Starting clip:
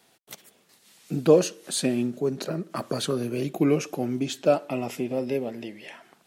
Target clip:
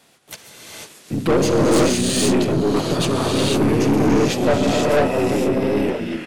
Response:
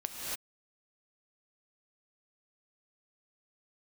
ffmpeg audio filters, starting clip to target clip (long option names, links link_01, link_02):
-filter_complex "[1:a]atrim=start_sample=2205,asetrate=25578,aresample=44100[link_01];[0:a][link_01]afir=irnorm=-1:irlink=0,asplit=2[link_02][link_03];[link_03]asetrate=33038,aresample=44100,atempo=1.33484,volume=-3dB[link_04];[link_02][link_04]amix=inputs=2:normalize=0,aeval=exprs='(tanh(7.08*val(0)+0.4)-tanh(0.4))/7.08':channel_layout=same,volume=4.5dB"